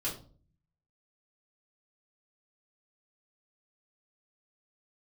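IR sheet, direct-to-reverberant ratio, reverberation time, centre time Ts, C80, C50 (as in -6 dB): -7.5 dB, 0.45 s, 25 ms, 13.5 dB, 8.5 dB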